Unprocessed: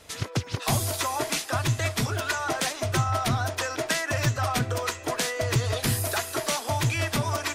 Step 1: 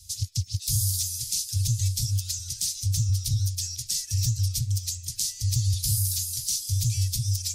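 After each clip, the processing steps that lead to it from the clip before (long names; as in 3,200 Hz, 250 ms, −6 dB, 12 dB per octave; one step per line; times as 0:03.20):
Chebyshev band-stop filter 100–5,000 Hz, order 3
in parallel at +1.5 dB: brickwall limiter −24 dBFS, peak gain reduction 8.5 dB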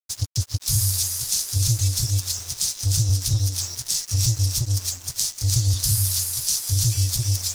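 delay with a high-pass on its return 303 ms, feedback 52%, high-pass 1,700 Hz, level −5 dB
dead-zone distortion −39 dBFS
level +5 dB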